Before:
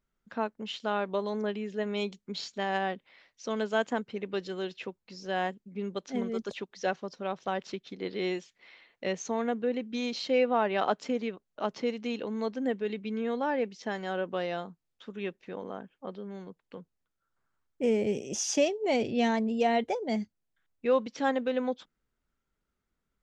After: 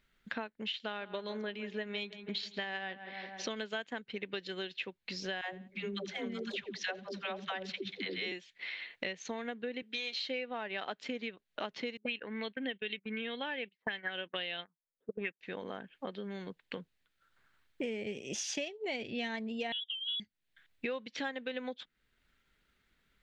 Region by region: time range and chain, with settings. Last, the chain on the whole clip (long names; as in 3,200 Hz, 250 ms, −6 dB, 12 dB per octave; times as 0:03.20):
0:00.68–0:03.48: low-pass filter 6,700 Hz + feedback echo with a low-pass in the loop 162 ms, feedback 57%, low-pass 2,200 Hz, level −14 dB
0:05.41–0:08.32: all-pass dispersion lows, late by 136 ms, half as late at 380 Hz + repeating echo 85 ms, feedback 26%, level −20 dB
0:09.82–0:10.29: high-pass filter 420 Hz + double-tracking delay 14 ms −8 dB
0:11.97–0:15.41: noise gate −39 dBFS, range −23 dB + envelope-controlled low-pass 380–3,200 Hz up, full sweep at −28.5 dBFS
0:19.72–0:20.20: drawn EQ curve 110 Hz 0 dB, 1,000 Hz −15 dB, 1,900 Hz −25 dB + voice inversion scrambler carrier 3,600 Hz
whole clip: flat-topped bell 2,600 Hz +10.5 dB; downward compressor 5 to 1, threshold −44 dBFS; transient designer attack +1 dB, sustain −3 dB; level +6 dB